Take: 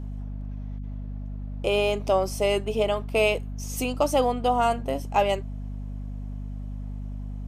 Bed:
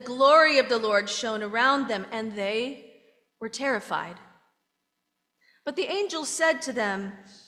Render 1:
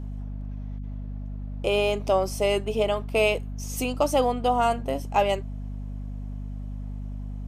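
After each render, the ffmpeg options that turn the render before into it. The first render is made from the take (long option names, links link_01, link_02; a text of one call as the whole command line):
ffmpeg -i in.wav -af anull out.wav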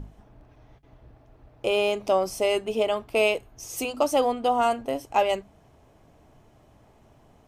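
ffmpeg -i in.wav -af "bandreject=frequency=50:width_type=h:width=6,bandreject=frequency=100:width_type=h:width=6,bandreject=frequency=150:width_type=h:width=6,bandreject=frequency=200:width_type=h:width=6,bandreject=frequency=250:width_type=h:width=6" out.wav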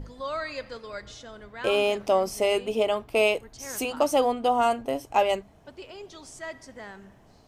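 ffmpeg -i in.wav -i bed.wav -filter_complex "[1:a]volume=-15dB[link_01];[0:a][link_01]amix=inputs=2:normalize=0" out.wav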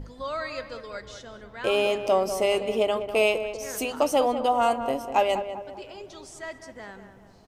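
ffmpeg -i in.wav -filter_complex "[0:a]asplit=2[link_01][link_02];[link_02]adelay=197,lowpass=frequency=1700:poles=1,volume=-9dB,asplit=2[link_03][link_04];[link_04]adelay=197,lowpass=frequency=1700:poles=1,volume=0.49,asplit=2[link_05][link_06];[link_06]adelay=197,lowpass=frequency=1700:poles=1,volume=0.49,asplit=2[link_07][link_08];[link_08]adelay=197,lowpass=frequency=1700:poles=1,volume=0.49,asplit=2[link_09][link_10];[link_10]adelay=197,lowpass=frequency=1700:poles=1,volume=0.49,asplit=2[link_11][link_12];[link_12]adelay=197,lowpass=frequency=1700:poles=1,volume=0.49[link_13];[link_01][link_03][link_05][link_07][link_09][link_11][link_13]amix=inputs=7:normalize=0" out.wav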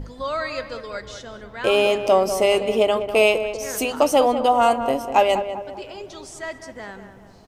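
ffmpeg -i in.wav -af "volume=5.5dB" out.wav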